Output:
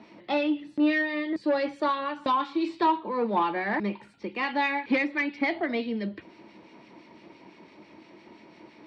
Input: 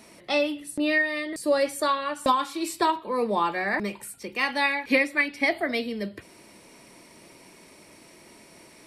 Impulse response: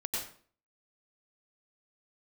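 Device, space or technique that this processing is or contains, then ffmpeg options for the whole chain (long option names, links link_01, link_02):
guitar amplifier with harmonic tremolo: -filter_complex "[0:a]acrossover=split=1600[link_01][link_02];[link_01]aeval=exprs='val(0)*(1-0.5/2+0.5/2*cos(2*PI*5.9*n/s))':channel_layout=same[link_03];[link_02]aeval=exprs='val(0)*(1-0.5/2-0.5/2*cos(2*PI*5.9*n/s))':channel_layout=same[link_04];[link_03][link_04]amix=inputs=2:normalize=0,asoftclip=type=tanh:threshold=-20.5dB,highpass=77,equalizer=frequency=210:width_type=q:width=4:gain=5,equalizer=frequency=320:width_type=q:width=4:gain=8,equalizer=frequency=900:width_type=q:width=4:gain=6,lowpass=frequency=4100:width=0.5412,lowpass=frequency=4100:width=1.3066"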